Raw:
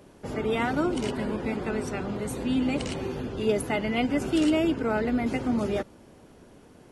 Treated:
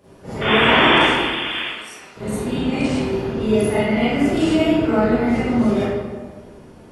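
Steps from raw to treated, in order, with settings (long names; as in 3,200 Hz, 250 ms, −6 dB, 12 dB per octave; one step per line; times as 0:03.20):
0:00.41–0:01.65: sound drawn into the spectrogram noise 220–3,600 Hz −22 dBFS
0:01.02–0:02.17: first difference
convolution reverb RT60 1.5 s, pre-delay 30 ms, DRR −12 dB
level −4.5 dB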